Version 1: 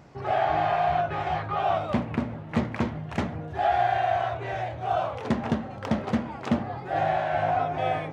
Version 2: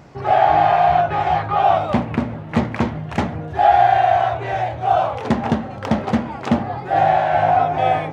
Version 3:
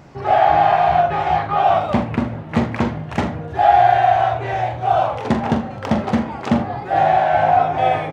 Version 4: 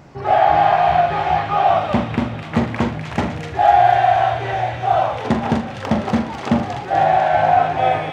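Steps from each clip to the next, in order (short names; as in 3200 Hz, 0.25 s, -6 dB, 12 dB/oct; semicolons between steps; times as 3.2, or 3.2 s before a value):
dynamic EQ 820 Hz, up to +6 dB, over -40 dBFS, Q 4.6; gain +7 dB
early reflections 43 ms -9 dB, 79 ms -17 dB
thin delay 0.249 s, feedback 64%, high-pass 2100 Hz, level -3.5 dB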